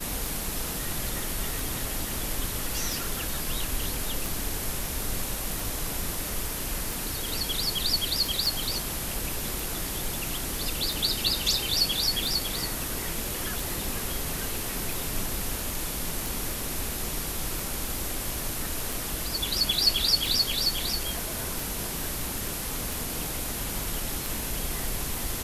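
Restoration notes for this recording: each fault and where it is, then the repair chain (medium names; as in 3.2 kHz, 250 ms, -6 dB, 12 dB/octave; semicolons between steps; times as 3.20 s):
tick 45 rpm
8.46 s: pop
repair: de-click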